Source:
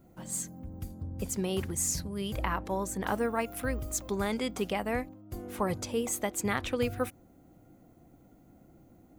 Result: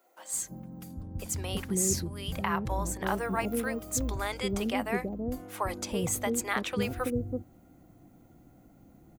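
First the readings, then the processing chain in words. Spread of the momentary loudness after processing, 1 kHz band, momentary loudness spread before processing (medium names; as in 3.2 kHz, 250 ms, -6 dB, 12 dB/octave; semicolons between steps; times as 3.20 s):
9 LU, +1.5 dB, 10 LU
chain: bands offset in time highs, lows 330 ms, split 490 Hz; trim +2 dB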